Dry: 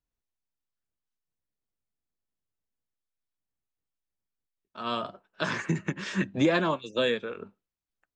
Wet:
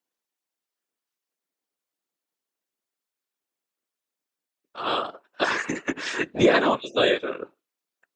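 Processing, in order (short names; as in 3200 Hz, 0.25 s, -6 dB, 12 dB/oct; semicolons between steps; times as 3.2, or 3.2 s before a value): brick-wall FIR high-pass 250 Hz; whisperiser; gain +6.5 dB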